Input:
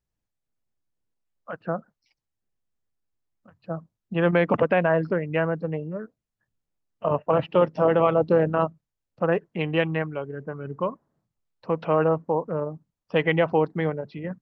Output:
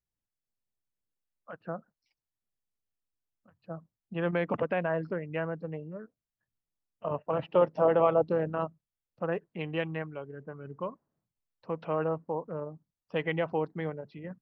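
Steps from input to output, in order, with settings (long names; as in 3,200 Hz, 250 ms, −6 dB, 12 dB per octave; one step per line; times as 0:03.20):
0:07.42–0:08.22: parametric band 700 Hz +6.5 dB 1.8 octaves
level −9 dB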